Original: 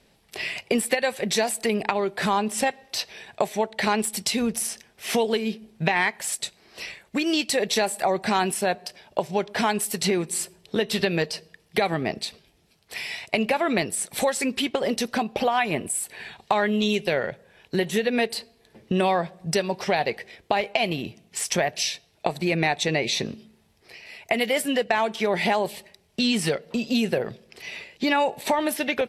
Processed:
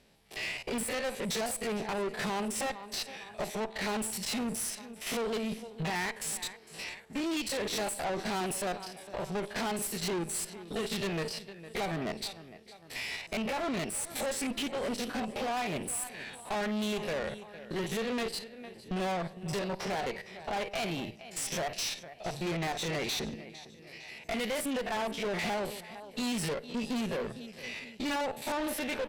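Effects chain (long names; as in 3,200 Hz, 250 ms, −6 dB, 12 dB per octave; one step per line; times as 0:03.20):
spectrum averaged block by block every 50 ms
repeating echo 456 ms, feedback 47%, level −20 dB
tube saturation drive 30 dB, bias 0.55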